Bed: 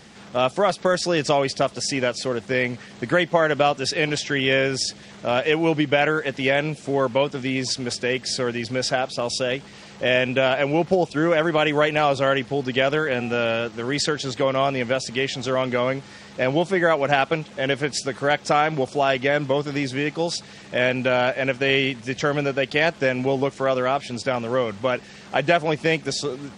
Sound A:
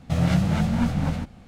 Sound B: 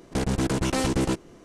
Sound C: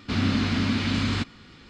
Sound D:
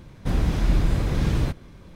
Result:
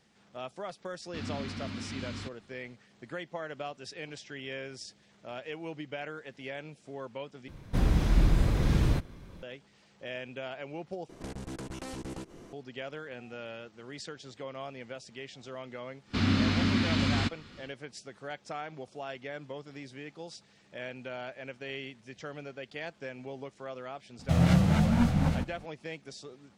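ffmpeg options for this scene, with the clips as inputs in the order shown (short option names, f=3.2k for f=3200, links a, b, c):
-filter_complex "[3:a]asplit=2[a][b];[0:a]volume=-20dB[c];[2:a]acompressor=threshold=-38dB:ratio=6:attack=3.2:release=140:knee=1:detection=peak[d];[c]asplit=3[e][f][g];[e]atrim=end=7.484[h];[4:a]atrim=end=1.95,asetpts=PTS-STARTPTS,volume=-3dB[i];[f]atrim=start=9.426:end=11.094[j];[d]atrim=end=1.44,asetpts=PTS-STARTPTS,volume=-0.5dB[k];[g]atrim=start=12.526[l];[a]atrim=end=1.69,asetpts=PTS-STARTPTS,volume=-14.5dB,afade=t=in:d=0.004:c=hsin,afade=t=out:st=1.686:d=0.004:c=hsin,adelay=1050[m];[b]atrim=end=1.69,asetpts=PTS-STARTPTS,volume=-2.5dB,afade=t=in:d=0.1,afade=t=out:st=1.59:d=0.1,adelay=16050[n];[1:a]atrim=end=1.47,asetpts=PTS-STARTPTS,volume=-2dB,afade=t=in:d=0.004:c=hsin,afade=t=out:st=1.466:d=0.004:c=hsin,adelay=24190[o];[h][i]acrossfade=d=0.004:c1=hsin:c2=hsin[p];[p][j]acrossfade=d=0.004:c1=hsin:c2=hsin[q];[q][k]acrossfade=d=0.004:c1=hsin:c2=hsin[r];[r][l]acrossfade=d=0.004:c1=hsin:c2=hsin[s];[s][m][n][o]amix=inputs=4:normalize=0"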